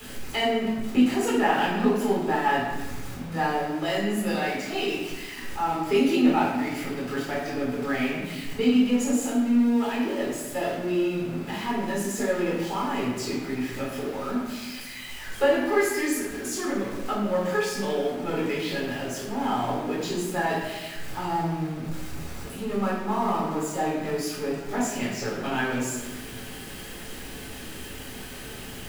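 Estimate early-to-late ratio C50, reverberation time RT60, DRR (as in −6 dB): 1.5 dB, 1.2 s, −6.5 dB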